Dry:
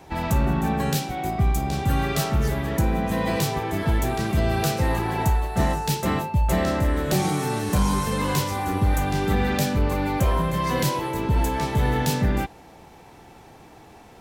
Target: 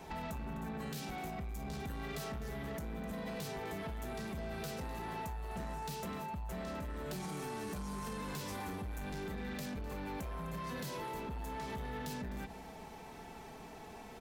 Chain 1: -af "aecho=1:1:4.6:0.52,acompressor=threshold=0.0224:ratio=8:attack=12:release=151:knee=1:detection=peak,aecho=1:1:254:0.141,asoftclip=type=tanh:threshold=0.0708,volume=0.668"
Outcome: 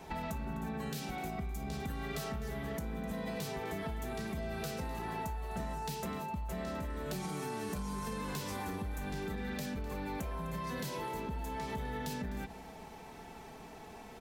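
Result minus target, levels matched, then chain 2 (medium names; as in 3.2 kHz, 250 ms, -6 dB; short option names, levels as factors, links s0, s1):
saturation: distortion -14 dB
-af "aecho=1:1:4.6:0.52,acompressor=threshold=0.0224:ratio=8:attack=12:release=151:knee=1:detection=peak,aecho=1:1:254:0.141,asoftclip=type=tanh:threshold=0.0224,volume=0.668"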